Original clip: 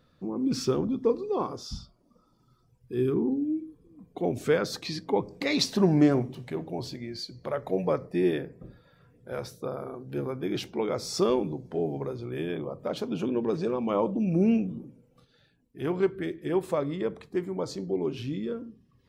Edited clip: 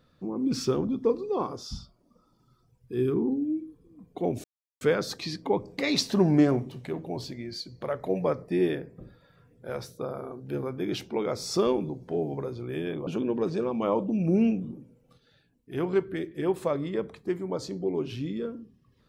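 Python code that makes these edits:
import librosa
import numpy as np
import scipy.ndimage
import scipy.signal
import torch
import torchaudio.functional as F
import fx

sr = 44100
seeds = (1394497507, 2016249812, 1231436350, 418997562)

y = fx.edit(x, sr, fx.insert_silence(at_s=4.44, length_s=0.37),
    fx.cut(start_s=12.7, length_s=0.44), tone=tone)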